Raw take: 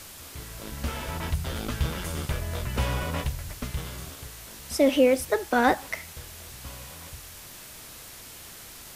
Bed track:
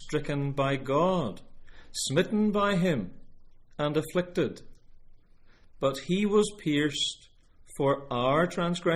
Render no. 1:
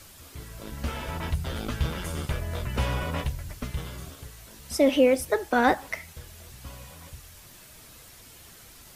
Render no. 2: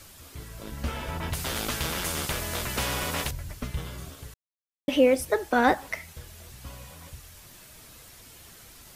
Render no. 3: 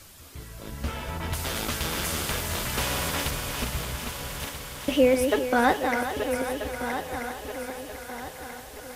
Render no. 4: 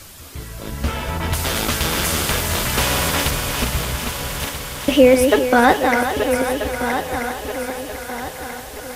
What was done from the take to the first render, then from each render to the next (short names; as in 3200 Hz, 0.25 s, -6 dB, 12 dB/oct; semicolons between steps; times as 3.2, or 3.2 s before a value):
denoiser 7 dB, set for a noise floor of -45 dBFS
1.33–3.31 spectral compressor 2:1; 4.34–4.88 mute
regenerating reverse delay 0.642 s, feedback 64%, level -6.5 dB; on a send: thinning echo 0.405 s, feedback 77%, high-pass 270 Hz, level -10 dB
gain +9 dB; limiter -1 dBFS, peak gain reduction 1.5 dB